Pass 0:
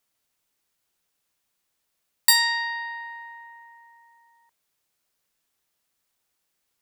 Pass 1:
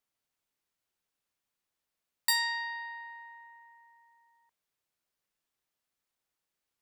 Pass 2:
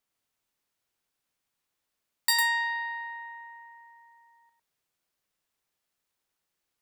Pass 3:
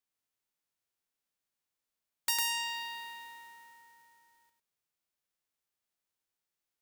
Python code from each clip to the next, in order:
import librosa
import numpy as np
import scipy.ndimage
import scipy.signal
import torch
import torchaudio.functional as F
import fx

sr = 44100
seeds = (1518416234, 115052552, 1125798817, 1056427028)

y1 = fx.high_shelf(x, sr, hz=4500.0, db=-5.0)
y1 = y1 * librosa.db_to_amplitude(-7.5)
y2 = y1 + 10.0 ** (-4.5 / 20.0) * np.pad(y1, (int(103 * sr / 1000.0), 0))[:len(y1)]
y2 = y2 * librosa.db_to_amplitude(2.5)
y3 = fx.envelope_flatten(y2, sr, power=0.3)
y3 = y3 * librosa.db_to_amplitude(-6.5)